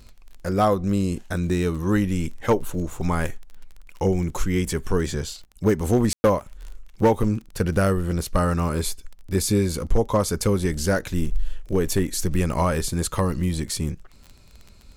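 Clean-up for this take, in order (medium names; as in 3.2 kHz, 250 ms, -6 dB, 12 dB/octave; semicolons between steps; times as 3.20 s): clip repair -11 dBFS; de-click; room tone fill 6.13–6.24 s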